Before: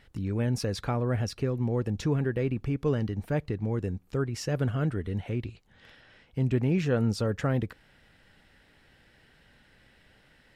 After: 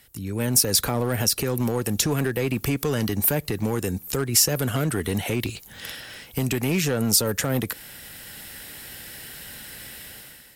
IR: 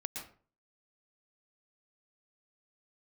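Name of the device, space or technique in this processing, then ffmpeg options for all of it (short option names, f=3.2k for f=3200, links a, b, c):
FM broadcast chain: -filter_complex "[0:a]highpass=f=52:p=1,dynaudnorm=f=170:g=7:m=15.5dB,acrossover=split=180|720[a][b][c];[a]acompressor=threshold=-29dB:ratio=4[d];[b]acompressor=threshold=-21dB:ratio=4[e];[c]acompressor=threshold=-29dB:ratio=4[f];[d][e][f]amix=inputs=3:normalize=0,aemphasis=mode=production:type=50fm,alimiter=limit=-13.5dB:level=0:latency=1:release=116,asoftclip=type=hard:threshold=-17dB,lowpass=f=15k:w=0.5412,lowpass=f=15k:w=1.3066,aemphasis=mode=production:type=50fm"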